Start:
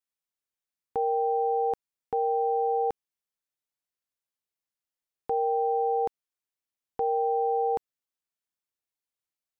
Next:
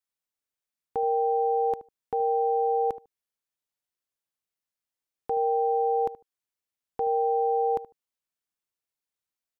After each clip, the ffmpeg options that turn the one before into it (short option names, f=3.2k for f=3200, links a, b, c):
-filter_complex "[0:a]asplit=2[a][b];[b]adelay=75,lowpass=f=1k:p=1,volume=-14dB,asplit=2[c][d];[d]adelay=75,lowpass=f=1k:p=1,volume=0.18[e];[a][c][e]amix=inputs=3:normalize=0"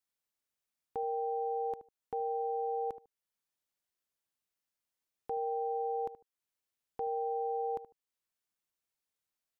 -af "alimiter=level_in=4.5dB:limit=-24dB:level=0:latency=1:release=485,volume=-4.5dB"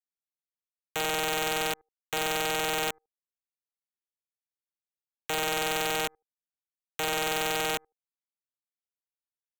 -af "aeval=exprs='0.0398*(cos(1*acos(clip(val(0)/0.0398,-1,1)))-cos(1*PI/2))+0.00501*(cos(2*acos(clip(val(0)/0.0398,-1,1)))-cos(2*PI/2))+0.0126*(cos(3*acos(clip(val(0)/0.0398,-1,1)))-cos(3*PI/2))':c=same,aeval=exprs='(mod(23.7*val(0)+1,2)-1)/23.7':c=same,volume=8dB"